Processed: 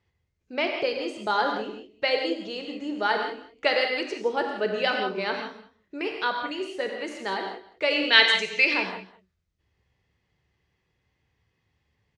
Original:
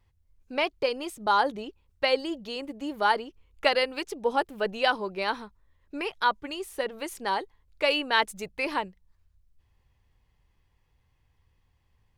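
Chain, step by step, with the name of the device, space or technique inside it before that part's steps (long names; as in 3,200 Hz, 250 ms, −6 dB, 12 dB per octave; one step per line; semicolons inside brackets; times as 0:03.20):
0:08.03–0:08.74: meter weighting curve D
car door speaker (loudspeaker in its box 95–7,000 Hz, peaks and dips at 390 Hz +5 dB, 990 Hz −6 dB, 2,000 Hz +3 dB)
single-tap delay 203 ms −19.5 dB
reverb whose tail is shaped and stops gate 200 ms flat, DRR 2 dB
level −1 dB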